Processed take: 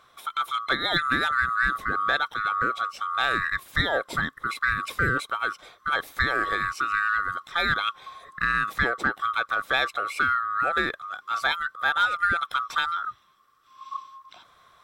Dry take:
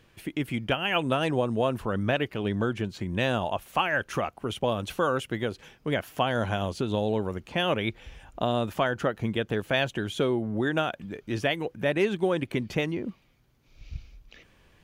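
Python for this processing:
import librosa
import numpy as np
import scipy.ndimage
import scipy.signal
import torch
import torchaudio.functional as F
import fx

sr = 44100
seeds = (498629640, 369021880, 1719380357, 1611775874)

p1 = fx.band_swap(x, sr, width_hz=1000)
p2 = 10.0 ** (-21.0 / 20.0) * np.tanh(p1 / 10.0 ** (-21.0 / 20.0))
y = p1 + (p2 * librosa.db_to_amplitude(-11.0))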